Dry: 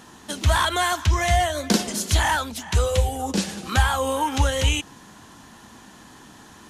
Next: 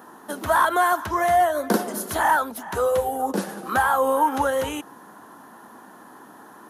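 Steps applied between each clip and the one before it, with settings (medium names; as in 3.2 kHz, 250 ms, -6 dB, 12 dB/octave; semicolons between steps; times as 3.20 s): high-pass 310 Hz 12 dB/octave; high-order bell 4.2 kHz -16 dB 2.3 oct; trim +4.5 dB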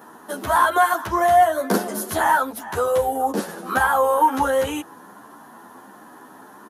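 endless flanger 10.8 ms +1.5 Hz; trim +4.5 dB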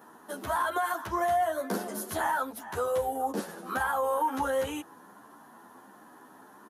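peak limiter -11.5 dBFS, peak gain reduction 6.5 dB; trim -8.5 dB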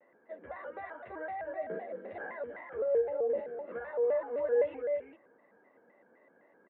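cascade formant filter e; delay 340 ms -5 dB; vibrato with a chosen wave square 3.9 Hz, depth 160 cents; trim +2 dB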